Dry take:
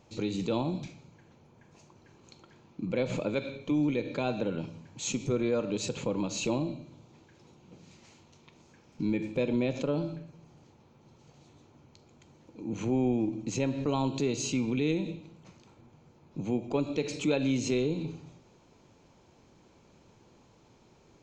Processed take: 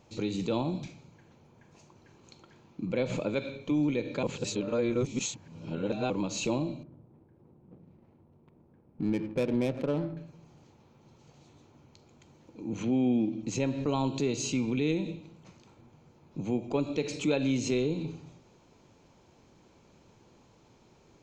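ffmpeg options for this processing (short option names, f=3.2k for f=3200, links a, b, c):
-filter_complex "[0:a]asettb=1/sr,asplit=3[a][b][c];[a]atrim=end=6.834[d];[b]atrim=start=6.83:end=10.17,asetpts=PTS-STARTPTS,afade=t=in:d=0.004:c=qsin,afade=t=out:st=3.336:d=0.004:c=qsin,adynamicsmooth=sensitivity=7.5:basefreq=560[e];[c]atrim=start=10.166[f];[d][e]acrossfade=d=0.004:c1=hsin:c2=qsin[g];[g][f]acrossfade=d=0.004:c1=qsin:c2=hsin,asettb=1/sr,asplit=3[h][i][j];[h]atrim=end=12.834[k];[i]atrim=start=12.83:end=13.43,asetpts=PTS-STARTPTS,afade=t=in:d=0.004:c=qsin,afade=t=out:st=0.596:d=0.004:c=qsin,highpass=120,equalizer=f=230:t=q:w=4:g=5,equalizer=f=390:t=q:w=4:g=-4,equalizer=f=930:t=q:w=4:g=-9,equalizer=f=3.3k:t=q:w=4:g=7,lowpass=f=5.7k:w=0.5412,lowpass=f=5.7k:w=1.3066[l];[j]atrim=start=13.426[m];[k][l]acrossfade=d=0.004:c1=hsin:c2=qsin[n];[n][m]acrossfade=d=0.004:c1=qsin:c2=hsin,asplit=3[o][p][q];[o]atrim=end=4.232[r];[p]atrim=start=4.228:end=6.102,asetpts=PTS-STARTPTS,areverse[s];[q]atrim=start=6.098[t];[r][s]acrossfade=d=0.004:c1=hsin:c2=hsin[u];[u][t]acrossfade=d=0.004:c1=hsin:c2=hsin"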